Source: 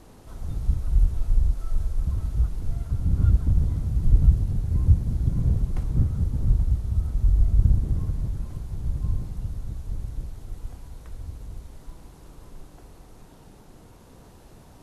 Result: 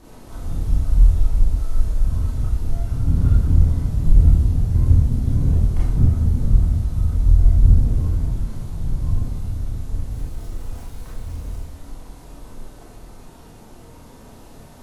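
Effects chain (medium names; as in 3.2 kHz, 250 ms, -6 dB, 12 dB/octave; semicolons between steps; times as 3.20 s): 10.11–11.61 s: jump at every zero crossing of -45.5 dBFS; Schroeder reverb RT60 0.48 s, combs from 25 ms, DRR -6 dB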